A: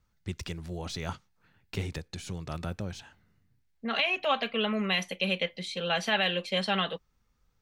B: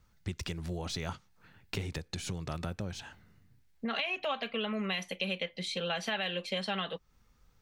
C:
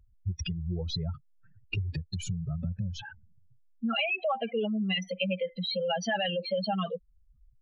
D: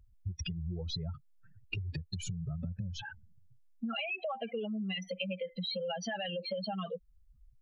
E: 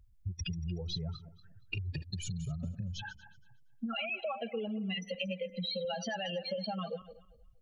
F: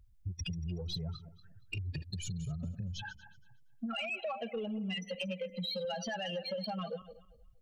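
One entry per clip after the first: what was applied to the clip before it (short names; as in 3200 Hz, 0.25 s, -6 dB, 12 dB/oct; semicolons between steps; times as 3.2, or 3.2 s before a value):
compressor 3:1, threshold -41 dBFS, peak gain reduction 14.5 dB; gain +6 dB
spectral contrast raised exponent 3.5; gain +5.5 dB
compressor, threshold -34 dBFS, peak gain reduction 9 dB
regenerating reverse delay 0.117 s, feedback 45%, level -13.5 dB
soft clip -28 dBFS, distortion -23 dB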